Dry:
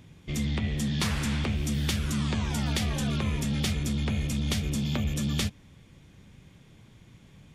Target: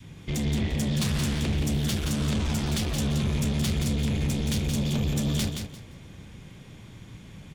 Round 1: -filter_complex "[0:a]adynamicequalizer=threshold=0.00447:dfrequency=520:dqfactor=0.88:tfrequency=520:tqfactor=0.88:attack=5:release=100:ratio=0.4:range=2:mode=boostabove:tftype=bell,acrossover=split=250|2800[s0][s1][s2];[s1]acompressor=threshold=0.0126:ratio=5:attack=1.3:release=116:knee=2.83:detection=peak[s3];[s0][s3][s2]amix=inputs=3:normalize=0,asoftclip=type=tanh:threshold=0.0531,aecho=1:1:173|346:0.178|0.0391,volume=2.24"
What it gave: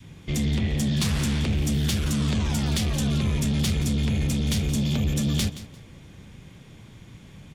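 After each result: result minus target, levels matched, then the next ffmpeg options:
echo-to-direct -9 dB; saturation: distortion -6 dB
-filter_complex "[0:a]adynamicequalizer=threshold=0.00447:dfrequency=520:dqfactor=0.88:tfrequency=520:tqfactor=0.88:attack=5:release=100:ratio=0.4:range=2:mode=boostabove:tftype=bell,acrossover=split=250|2800[s0][s1][s2];[s1]acompressor=threshold=0.0126:ratio=5:attack=1.3:release=116:knee=2.83:detection=peak[s3];[s0][s3][s2]amix=inputs=3:normalize=0,asoftclip=type=tanh:threshold=0.0531,aecho=1:1:173|346|519:0.501|0.11|0.0243,volume=2.24"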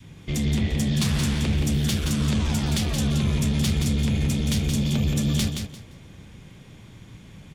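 saturation: distortion -6 dB
-filter_complex "[0:a]adynamicequalizer=threshold=0.00447:dfrequency=520:dqfactor=0.88:tfrequency=520:tqfactor=0.88:attack=5:release=100:ratio=0.4:range=2:mode=boostabove:tftype=bell,acrossover=split=250|2800[s0][s1][s2];[s1]acompressor=threshold=0.0126:ratio=5:attack=1.3:release=116:knee=2.83:detection=peak[s3];[s0][s3][s2]amix=inputs=3:normalize=0,asoftclip=type=tanh:threshold=0.0266,aecho=1:1:173|346|519:0.501|0.11|0.0243,volume=2.24"

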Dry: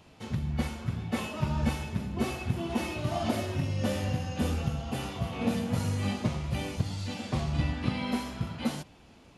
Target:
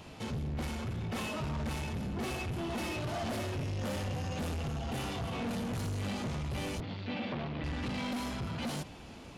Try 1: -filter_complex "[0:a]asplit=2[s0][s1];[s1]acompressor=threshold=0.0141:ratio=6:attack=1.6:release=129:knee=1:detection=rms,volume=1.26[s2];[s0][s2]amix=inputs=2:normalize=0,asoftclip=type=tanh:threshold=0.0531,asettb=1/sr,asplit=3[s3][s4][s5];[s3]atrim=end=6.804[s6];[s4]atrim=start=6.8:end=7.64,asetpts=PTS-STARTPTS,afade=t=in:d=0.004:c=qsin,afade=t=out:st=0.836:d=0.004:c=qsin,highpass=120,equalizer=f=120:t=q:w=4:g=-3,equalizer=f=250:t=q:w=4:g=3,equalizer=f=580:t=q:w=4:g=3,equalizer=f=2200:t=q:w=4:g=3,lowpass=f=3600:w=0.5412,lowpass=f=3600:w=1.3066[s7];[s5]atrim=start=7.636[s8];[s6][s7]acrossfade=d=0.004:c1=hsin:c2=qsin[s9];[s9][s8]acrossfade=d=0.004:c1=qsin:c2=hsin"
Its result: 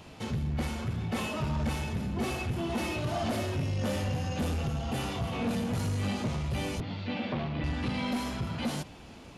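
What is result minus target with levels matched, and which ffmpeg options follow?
saturation: distortion -5 dB
-filter_complex "[0:a]asplit=2[s0][s1];[s1]acompressor=threshold=0.0141:ratio=6:attack=1.6:release=129:knee=1:detection=rms,volume=1.26[s2];[s0][s2]amix=inputs=2:normalize=0,asoftclip=type=tanh:threshold=0.0224,asettb=1/sr,asplit=3[s3][s4][s5];[s3]atrim=end=6.804[s6];[s4]atrim=start=6.8:end=7.64,asetpts=PTS-STARTPTS,afade=t=in:d=0.004:c=qsin,afade=t=out:st=0.836:d=0.004:c=qsin,highpass=120,equalizer=f=120:t=q:w=4:g=-3,equalizer=f=250:t=q:w=4:g=3,equalizer=f=580:t=q:w=4:g=3,equalizer=f=2200:t=q:w=4:g=3,lowpass=f=3600:w=0.5412,lowpass=f=3600:w=1.3066[s7];[s5]atrim=start=7.636[s8];[s6][s7]acrossfade=d=0.004:c1=hsin:c2=qsin[s9];[s9][s8]acrossfade=d=0.004:c1=qsin:c2=hsin"

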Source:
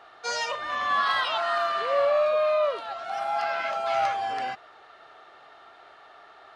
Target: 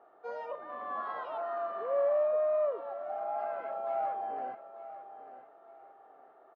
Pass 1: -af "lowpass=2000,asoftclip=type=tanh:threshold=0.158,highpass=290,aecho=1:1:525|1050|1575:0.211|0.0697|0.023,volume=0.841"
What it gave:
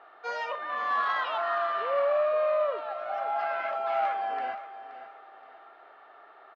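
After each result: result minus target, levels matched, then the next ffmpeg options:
2 kHz band +10.5 dB; echo 369 ms early
-af "lowpass=610,asoftclip=type=tanh:threshold=0.158,highpass=290,aecho=1:1:525|1050|1575:0.211|0.0697|0.023,volume=0.841"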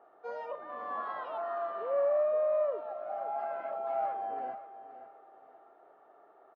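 echo 369 ms early
-af "lowpass=610,asoftclip=type=tanh:threshold=0.158,highpass=290,aecho=1:1:894|1788|2682:0.211|0.0697|0.023,volume=0.841"

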